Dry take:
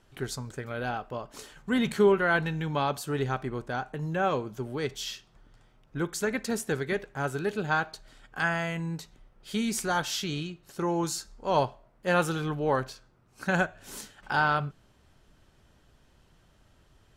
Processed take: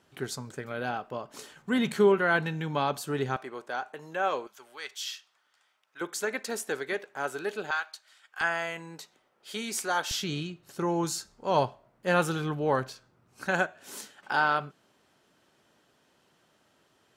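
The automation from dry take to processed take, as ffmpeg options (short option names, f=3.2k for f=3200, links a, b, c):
-af "asetnsamples=n=441:p=0,asendcmd='3.36 highpass f 470;4.47 highpass f 1200;6.01 highpass f 390;7.71 highpass f 1300;8.41 highpass f 390;10.11 highpass f 91;13.46 highpass f 250',highpass=140"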